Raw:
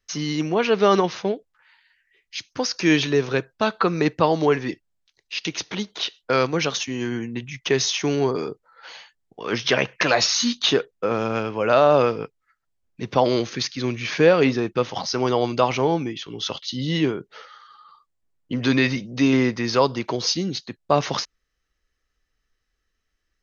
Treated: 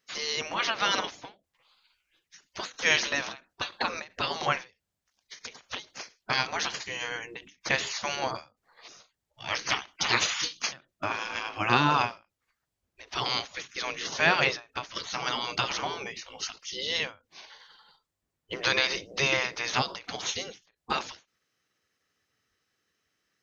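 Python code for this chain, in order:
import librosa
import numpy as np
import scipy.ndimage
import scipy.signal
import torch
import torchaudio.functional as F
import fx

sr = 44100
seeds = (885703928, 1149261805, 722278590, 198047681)

y = fx.spec_gate(x, sr, threshold_db=-15, keep='weak')
y = fx.end_taper(y, sr, db_per_s=210.0)
y = y * 10.0 ** (3.5 / 20.0)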